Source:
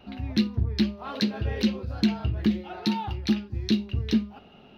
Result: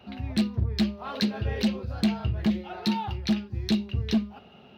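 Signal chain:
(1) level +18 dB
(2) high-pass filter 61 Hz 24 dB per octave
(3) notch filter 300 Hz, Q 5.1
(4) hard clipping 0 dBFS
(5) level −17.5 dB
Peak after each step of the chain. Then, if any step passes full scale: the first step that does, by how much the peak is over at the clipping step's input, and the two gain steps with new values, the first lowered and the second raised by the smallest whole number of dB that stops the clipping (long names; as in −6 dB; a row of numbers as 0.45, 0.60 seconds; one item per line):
+7.0, +7.5, +7.5, 0.0, −17.5 dBFS
step 1, 7.5 dB
step 1 +10 dB, step 5 −9.5 dB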